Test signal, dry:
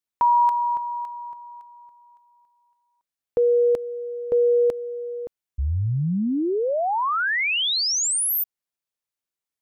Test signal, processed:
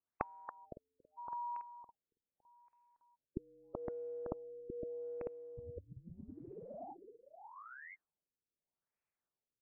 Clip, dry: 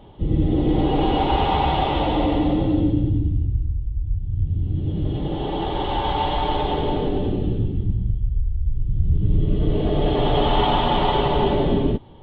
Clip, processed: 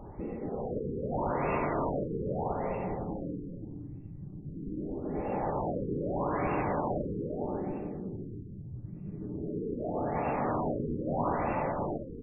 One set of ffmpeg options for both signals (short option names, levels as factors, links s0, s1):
-filter_complex "[0:a]acompressor=threshold=0.0891:ratio=10:attack=62:release=339:knee=1:detection=rms,afftfilt=real='re*lt(hypot(re,im),0.224)':imag='im*lt(hypot(re,im),0.224)':win_size=1024:overlap=0.75,asplit=2[s0][s1];[s1]aecho=0:1:512:0.473[s2];[s0][s2]amix=inputs=2:normalize=0,afftfilt=real='re*lt(b*sr/1024,500*pow(2800/500,0.5+0.5*sin(2*PI*0.8*pts/sr)))':imag='im*lt(b*sr/1024,500*pow(2800/500,0.5+0.5*sin(2*PI*0.8*pts/sr)))':win_size=1024:overlap=0.75"